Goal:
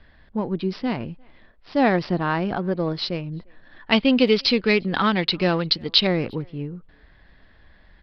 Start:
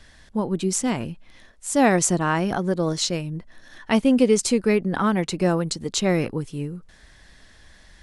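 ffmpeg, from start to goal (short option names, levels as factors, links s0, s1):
-filter_complex "[0:a]adynamicsmooth=sensitivity=6:basefreq=2700,asettb=1/sr,asplit=3[s0][s1][s2];[s0]atrim=end=3.924[s3];[s1]atrim=start=3.92:end=6.07,asetpts=PTS-STARTPTS,afade=t=in:d=0.004:c=qsin,afade=t=out:st=2.146:d=0.004:c=qsin,equalizer=f=3700:w=0.62:g=13.5[s4];[s2]atrim=start=6.066[s5];[s3][s4]acrossfade=d=0.004:c1=hsin:c2=qsin[s6];[s6][s5]acrossfade=d=0.004:c1=qsin:c2=hsin,aresample=11025,aresample=44100,asplit=2[s7][s8];[s8]adelay=350,highpass=300,lowpass=3400,asoftclip=type=hard:threshold=0.335,volume=0.0355[s9];[s7][s9]amix=inputs=2:normalize=0,volume=0.891"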